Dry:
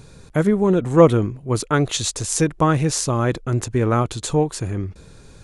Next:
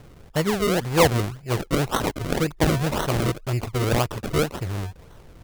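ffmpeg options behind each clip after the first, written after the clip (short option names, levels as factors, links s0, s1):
-filter_complex "[0:a]equalizer=f=250:t=o:w=1:g=-7,equalizer=f=1000:t=o:w=1:g=4,equalizer=f=4000:t=o:w=1:g=12,equalizer=f=8000:t=o:w=1:g=4,acrossover=split=1300[s0][s1];[s0]acontrast=73[s2];[s2][s1]amix=inputs=2:normalize=0,acrusher=samples=36:mix=1:aa=0.000001:lfo=1:lforange=36:lforate=1.9,volume=0.376"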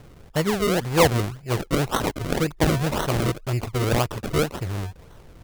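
-af anull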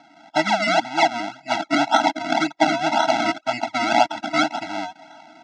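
-af "highpass=f=340:w=0.5412,highpass=f=340:w=1.3066,equalizer=f=490:t=q:w=4:g=9,equalizer=f=1500:t=q:w=4:g=-4,equalizer=f=2800:t=q:w=4:g=-3,equalizer=f=4700:t=q:w=4:g=-3,lowpass=f=5300:w=0.5412,lowpass=f=5300:w=1.3066,dynaudnorm=f=120:g=3:m=2,afftfilt=real='re*eq(mod(floor(b*sr/1024/320),2),0)':imag='im*eq(mod(floor(b*sr/1024/320),2),0)':win_size=1024:overlap=0.75,volume=2.51"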